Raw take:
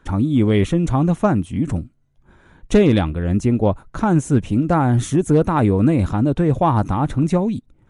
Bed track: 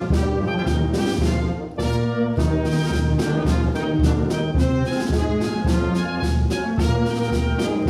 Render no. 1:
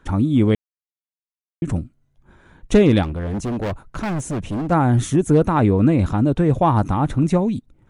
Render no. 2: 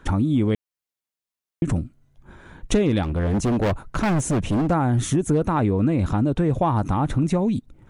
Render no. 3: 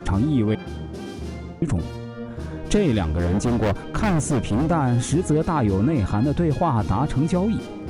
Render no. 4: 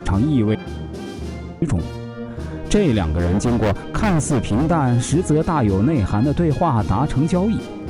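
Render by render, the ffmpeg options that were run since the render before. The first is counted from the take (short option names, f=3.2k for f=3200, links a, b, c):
-filter_complex "[0:a]asplit=3[a][b][c];[a]afade=t=out:st=3.02:d=0.02[d];[b]volume=21.5dB,asoftclip=hard,volume=-21.5dB,afade=t=in:st=3.02:d=0.02,afade=t=out:st=4.7:d=0.02[e];[c]afade=t=in:st=4.7:d=0.02[f];[d][e][f]amix=inputs=3:normalize=0,asettb=1/sr,asplit=3[g][h][i];[g]atrim=end=5.574[j];[h]atrim=start=5.57:end=6.06,asetpts=PTS-STARTPTS,afade=t=in:d=0.004:c=qsin,afade=t=out:st=0.486:d=0.004:c=qsin,lowpass=7.1k[k];[i]atrim=start=6.056[l];[j][k]acrossfade=d=0.004:c1=hsin:c2=qsin[m];[m][l]acrossfade=d=0.004:c1=qsin:c2=hsin,asplit=3[n][o][p];[n]atrim=end=0.55,asetpts=PTS-STARTPTS,afade=t=out:st=0.546:d=0.004:c=hsin[q];[o]atrim=start=0.55:end=1.62,asetpts=PTS-STARTPTS,volume=0[r];[p]atrim=start=1.62,asetpts=PTS-STARTPTS,afade=t=in:d=0.004:c=hsin[s];[q][r][s]concat=n=3:v=0:a=1"
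-filter_complex "[0:a]asplit=2[a][b];[b]alimiter=limit=-14.5dB:level=0:latency=1,volume=-2dB[c];[a][c]amix=inputs=2:normalize=0,acompressor=threshold=-20dB:ratio=2.5"
-filter_complex "[1:a]volume=-12.5dB[a];[0:a][a]amix=inputs=2:normalize=0"
-af "volume=3dB"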